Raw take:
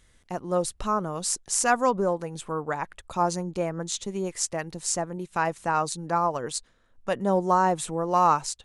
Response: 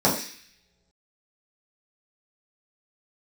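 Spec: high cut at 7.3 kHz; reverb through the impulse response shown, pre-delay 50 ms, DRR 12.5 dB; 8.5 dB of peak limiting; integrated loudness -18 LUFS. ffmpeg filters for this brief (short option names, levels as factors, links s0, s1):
-filter_complex "[0:a]lowpass=7300,alimiter=limit=0.133:level=0:latency=1,asplit=2[s0][s1];[1:a]atrim=start_sample=2205,adelay=50[s2];[s1][s2]afir=irnorm=-1:irlink=0,volume=0.0316[s3];[s0][s3]amix=inputs=2:normalize=0,volume=3.76"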